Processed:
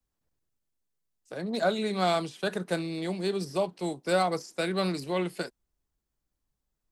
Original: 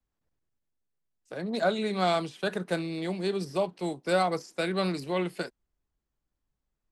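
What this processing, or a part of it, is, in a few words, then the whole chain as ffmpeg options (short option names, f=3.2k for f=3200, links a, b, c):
exciter from parts: -filter_complex "[0:a]asplit=2[a][b];[b]highpass=3.5k,asoftclip=type=tanh:threshold=-38.5dB,volume=-4.5dB[c];[a][c]amix=inputs=2:normalize=0"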